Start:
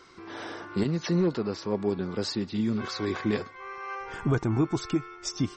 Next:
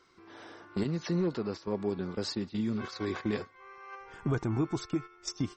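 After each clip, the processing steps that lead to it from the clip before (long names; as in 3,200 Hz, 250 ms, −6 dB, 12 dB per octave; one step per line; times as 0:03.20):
noise gate −33 dBFS, range −10 dB
in parallel at +0.5 dB: downward compressor, threshold −34 dBFS, peak gain reduction 13 dB
on the sum: level −7 dB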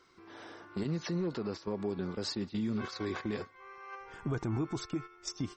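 brickwall limiter −26 dBFS, peak gain reduction 5 dB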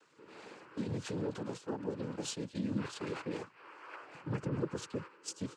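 cochlear-implant simulation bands 8
level −2.5 dB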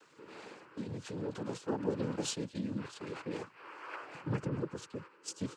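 amplitude tremolo 0.51 Hz, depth 63%
level +4.5 dB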